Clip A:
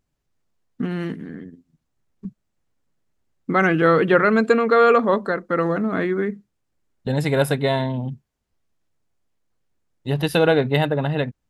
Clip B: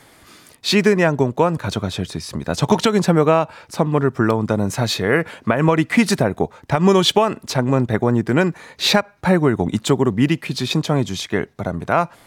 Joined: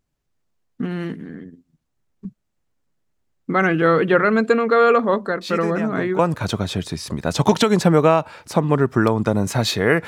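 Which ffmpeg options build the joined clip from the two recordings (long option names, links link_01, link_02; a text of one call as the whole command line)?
ffmpeg -i cue0.wav -i cue1.wav -filter_complex "[1:a]asplit=2[link_01][link_02];[0:a]apad=whole_dur=10.07,atrim=end=10.07,atrim=end=6.192[link_03];[link_02]atrim=start=1.418:end=5.3[link_04];[link_01]atrim=start=0.64:end=1.42,asetpts=PTS-STARTPTS,volume=-13.5dB,afade=type=in:duration=0.004:curve=hsin,afade=type=out:start_time=0.776:duration=0.004:curve=hsin,adelay=238581S[link_05];[link_03][link_04]acrossfade=duration=0.004:curve1=hsin:curve2=hsin[link_06];[link_06][link_05]amix=inputs=2:normalize=0" out.wav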